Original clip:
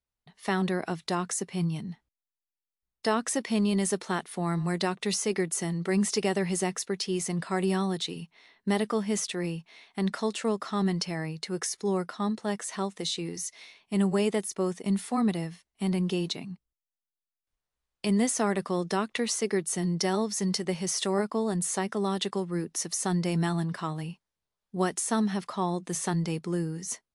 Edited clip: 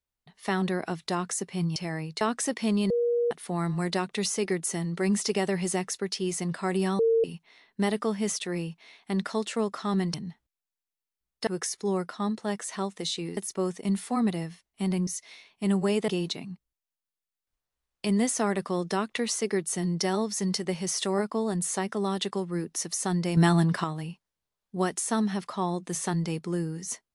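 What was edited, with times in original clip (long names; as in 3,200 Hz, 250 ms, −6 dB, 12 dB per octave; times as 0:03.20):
0:01.76–0:03.09: swap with 0:11.02–0:11.47
0:03.78–0:04.19: beep over 476 Hz −22 dBFS
0:07.87–0:08.12: beep over 455 Hz −19 dBFS
0:13.37–0:14.38: move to 0:16.08
0:23.37–0:23.84: clip gain +7 dB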